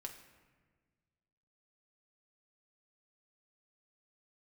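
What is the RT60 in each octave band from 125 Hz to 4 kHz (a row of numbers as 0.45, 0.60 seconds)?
2.2, 2.0, 1.6, 1.4, 1.4, 0.90 seconds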